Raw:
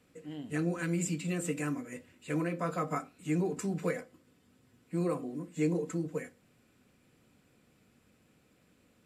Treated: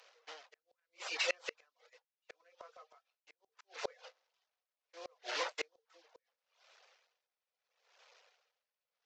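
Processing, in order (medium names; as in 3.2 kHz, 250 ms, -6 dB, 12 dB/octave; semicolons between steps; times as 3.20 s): one-bit delta coder 32 kbps, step -40.5 dBFS; gate -42 dBFS, range -29 dB; steep high-pass 490 Hz 48 dB/octave; reverb removal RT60 0.53 s; inverted gate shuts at -33 dBFS, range -36 dB; logarithmic tremolo 0.74 Hz, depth 32 dB; trim +16 dB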